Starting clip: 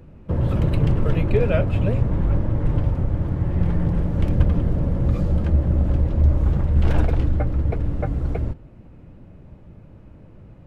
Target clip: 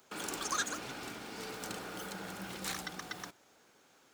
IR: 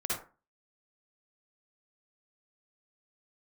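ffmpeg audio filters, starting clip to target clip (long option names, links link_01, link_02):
-af "aderivative,asetrate=113778,aresample=44100,volume=9.5dB"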